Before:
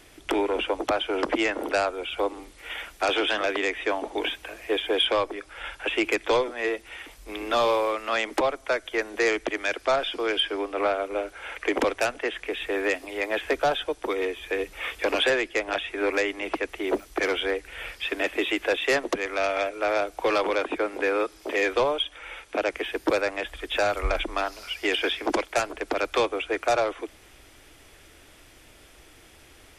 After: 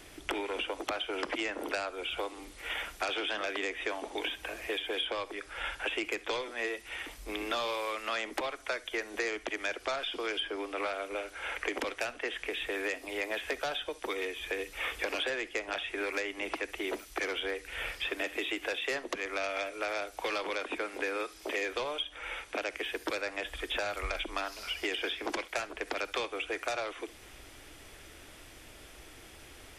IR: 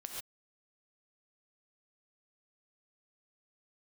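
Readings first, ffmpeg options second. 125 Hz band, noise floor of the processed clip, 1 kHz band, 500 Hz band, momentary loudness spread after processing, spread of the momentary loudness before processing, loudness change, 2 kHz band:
-9.0 dB, -53 dBFS, -9.5 dB, -11.0 dB, 7 LU, 7 LU, -8.5 dB, -6.0 dB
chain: -filter_complex "[0:a]acrossover=split=1600|4400[a][b][c];[a]acompressor=threshold=-37dB:ratio=4[d];[b]acompressor=threshold=-37dB:ratio=4[e];[c]acompressor=threshold=-48dB:ratio=4[f];[d][e][f]amix=inputs=3:normalize=0,asplit=2[g][h];[1:a]atrim=start_sample=2205,atrim=end_sample=3528[i];[h][i]afir=irnorm=-1:irlink=0,volume=0.5dB[j];[g][j]amix=inputs=2:normalize=0,volume=-3.5dB"

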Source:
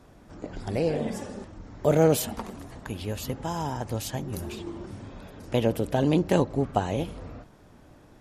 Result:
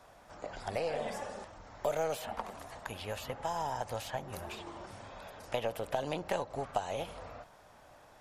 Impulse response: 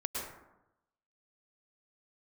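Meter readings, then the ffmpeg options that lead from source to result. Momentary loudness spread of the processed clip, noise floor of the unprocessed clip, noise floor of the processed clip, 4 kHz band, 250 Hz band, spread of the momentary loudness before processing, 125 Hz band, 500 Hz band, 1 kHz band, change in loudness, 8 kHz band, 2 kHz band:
14 LU, -53 dBFS, -59 dBFS, -6.0 dB, -18.5 dB, 20 LU, -17.0 dB, -9.0 dB, -3.5 dB, -10.5 dB, -10.5 dB, -4.0 dB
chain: -filter_complex "[0:a]lowshelf=f=460:t=q:w=1.5:g=-11.5,acrossover=split=690|3100[a][b][c];[a]acompressor=threshold=-35dB:ratio=4[d];[b]acompressor=threshold=-38dB:ratio=4[e];[c]acompressor=threshold=-51dB:ratio=4[f];[d][e][f]amix=inputs=3:normalize=0,aeval=exprs='0.133*(cos(1*acos(clip(val(0)/0.133,-1,1)))-cos(1*PI/2))+0.00335*(cos(8*acos(clip(val(0)/0.133,-1,1)))-cos(8*PI/2))':c=same"

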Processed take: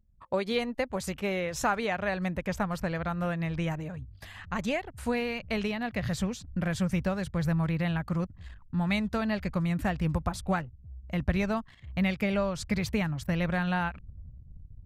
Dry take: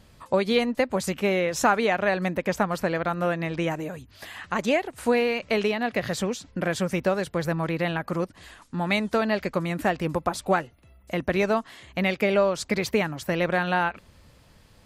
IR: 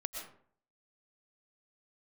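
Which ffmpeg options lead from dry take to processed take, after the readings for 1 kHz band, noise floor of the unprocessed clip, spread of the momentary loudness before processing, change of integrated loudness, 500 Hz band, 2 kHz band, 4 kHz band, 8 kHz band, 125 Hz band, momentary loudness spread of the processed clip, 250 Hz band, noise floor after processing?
-7.0 dB, -56 dBFS, 8 LU, -5.0 dB, -8.5 dB, -6.5 dB, -6.0 dB, -6.0 dB, +1.5 dB, 8 LU, -2.0 dB, -53 dBFS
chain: -af "asubboost=boost=9:cutoff=120,anlmdn=0.1,volume=-6dB"

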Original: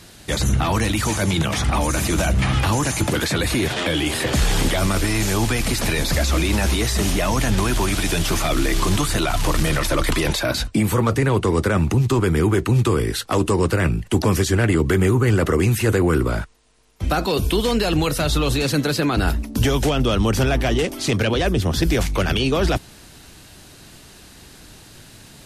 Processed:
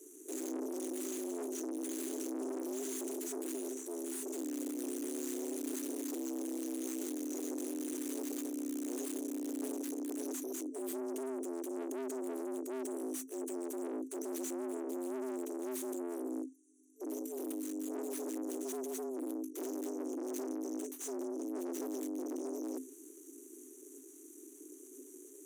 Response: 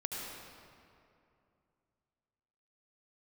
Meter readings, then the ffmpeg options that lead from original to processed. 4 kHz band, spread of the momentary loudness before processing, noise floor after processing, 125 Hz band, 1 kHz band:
-31.5 dB, 3 LU, -55 dBFS, under -40 dB, -25.5 dB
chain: -af "afftfilt=real='re*(1-between(b*sr/4096,180,5500))':imag='im*(1-between(b*sr/4096,180,5500))':win_size=4096:overlap=0.75,aeval=exprs='(tanh(63.1*val(0)+0.65)-tanh(0.65))/63.1':c=same,afreqshift=260,volume=-3.5dB"

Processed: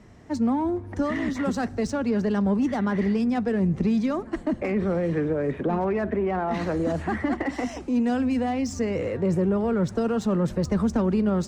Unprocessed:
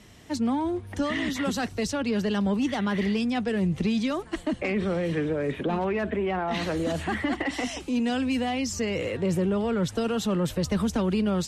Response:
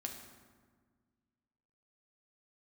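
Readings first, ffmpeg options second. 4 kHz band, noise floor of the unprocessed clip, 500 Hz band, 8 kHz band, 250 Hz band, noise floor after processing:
-9.0 dB, -44 dBFS, +2.0 dB, n/a, +2.5 dB, -40 dBFS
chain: -filter_complex "[0:a]equalizer=f=3.2k:w=1.3:g=-12.5,adynamicsmooth=sensitivity=6:basefreq=4.8k,asplit=2[a][b];[1:a]atrim=start_sample=2205[c];[b][c]afir=irnorm=-1:irlink=0,volume=-15dB[d];[a][d]amix=inputs=2:normalize=0,volume=1.5dB"

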